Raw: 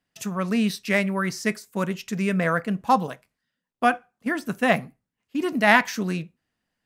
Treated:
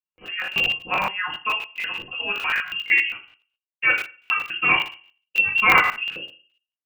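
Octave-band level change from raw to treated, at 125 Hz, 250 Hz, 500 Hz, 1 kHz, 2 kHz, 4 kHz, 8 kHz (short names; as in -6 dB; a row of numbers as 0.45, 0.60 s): -13.5 dB, -17.0 dB, -10.5 dB, -1.0 dB, +6.0 dB, +9.0 dB, n/a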